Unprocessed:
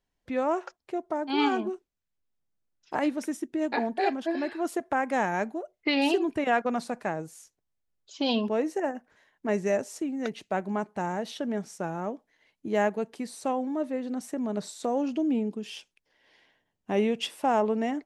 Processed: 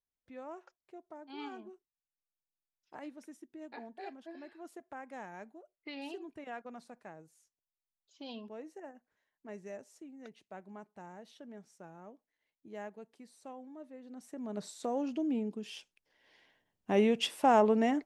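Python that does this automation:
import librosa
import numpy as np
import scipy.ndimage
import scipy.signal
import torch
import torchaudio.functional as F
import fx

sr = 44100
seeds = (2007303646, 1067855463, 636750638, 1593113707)

y = fx.gain(x, sr, db=fx.line((13.97, -19.0), (14.65, -6.5), (15.41, -6.5), (17.47, 0.0)))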